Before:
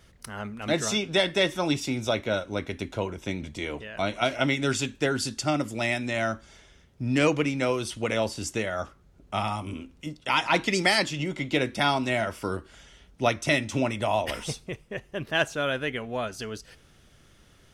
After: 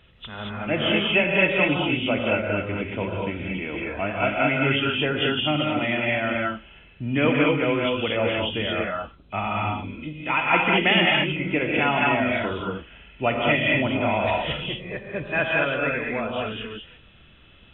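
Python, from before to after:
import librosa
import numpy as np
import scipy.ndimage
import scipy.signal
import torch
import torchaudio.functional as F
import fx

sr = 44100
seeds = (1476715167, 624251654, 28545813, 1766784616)

y = fx.freq_compress(x, sr, knee_hz=2400.0, ratio=4.0)
y = fx.rev_gated(y, sr, seeds[0], gate_ms=250, shape='rising', drr_db=-2.0)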